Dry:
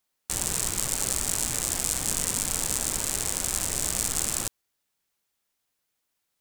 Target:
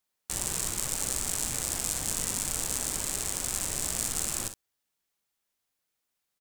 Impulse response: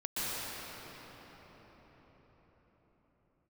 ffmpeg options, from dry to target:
-af "aecho=1:1:40|61:0.237|0.282,volume=-4dB"

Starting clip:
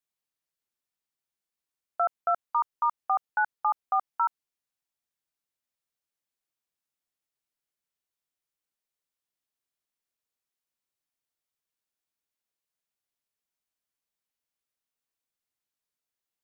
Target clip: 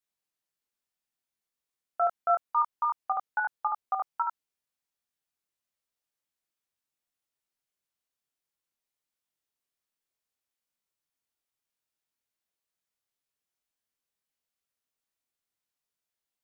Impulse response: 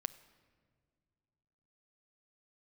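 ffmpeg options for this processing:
-af "flanger=delay=22.5:depth=2.8:speed=0.14,volume=3dB"

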